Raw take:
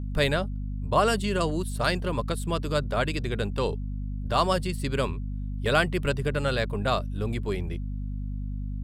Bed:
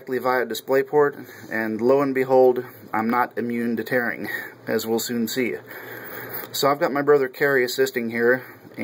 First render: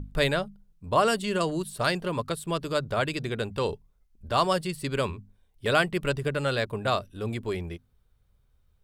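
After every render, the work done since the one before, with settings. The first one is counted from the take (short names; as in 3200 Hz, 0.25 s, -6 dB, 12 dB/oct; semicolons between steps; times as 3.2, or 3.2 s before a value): notches 50/100/150/200/250 Hz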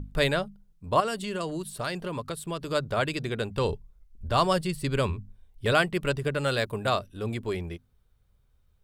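1–2.68 compressor 2:1, threshold -31 dBFS; 3.57–5.73 low shelf 100 Hz +11.5 dB; 6.44–6.89 high shelf 7700 Hz +8.5 dB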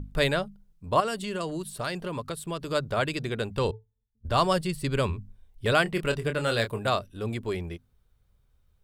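3.71–4.25 octave resonator A, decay 0.17 s; 5.83–6.79 doubler 26 ms -8 dB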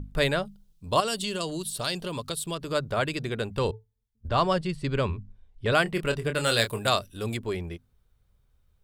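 0.45–2.55 resonant high shelf 2600 Hz +7 dB, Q 1.5; 4.28–5.73 air absorption 85 m; 6.35–7.37 high shelf 3200 Hz +11.5 dB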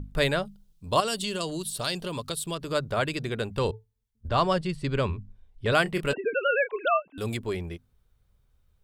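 6.13–7.18 sine-wave speech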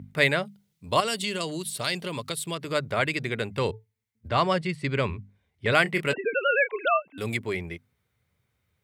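HPF 90 Hz 24 dB/oct; bell 2100 Hz +11.5 dB 0.42 oct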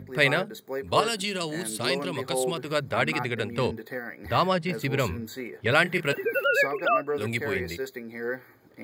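add bed -13 dB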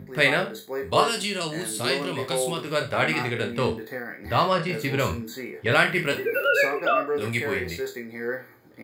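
spectral trails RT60 0.30 s; doubler 25 ms -7 dB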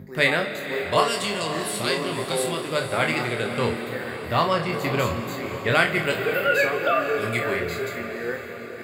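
on a send: diffused feedback echo 0.53 s, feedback 56%, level -11 dB; on the sum: digital reverb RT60 4 s, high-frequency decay 0.65×, pre-delay 0.11 s, DRR 10 dB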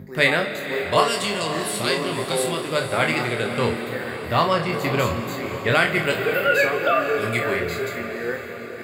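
gain +2 dB; limiter -3 dBFS, peak gain reduction 2.5 dB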